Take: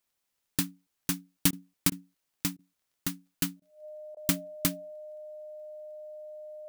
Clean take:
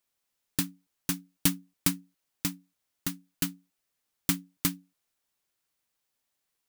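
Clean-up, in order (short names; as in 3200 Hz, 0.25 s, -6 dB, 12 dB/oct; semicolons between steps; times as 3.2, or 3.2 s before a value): de-click; notch 610 Hz, Q 30; interpolate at 1.51/1.9/2.57/3.6/4.15, 17 ms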